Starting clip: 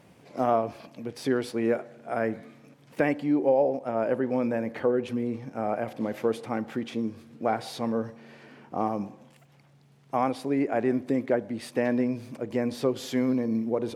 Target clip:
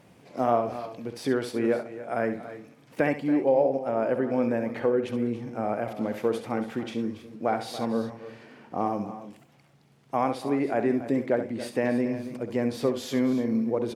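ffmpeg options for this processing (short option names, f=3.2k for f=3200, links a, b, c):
-af "aecho=1:1:67|281|314:0.316|0.2|0.119"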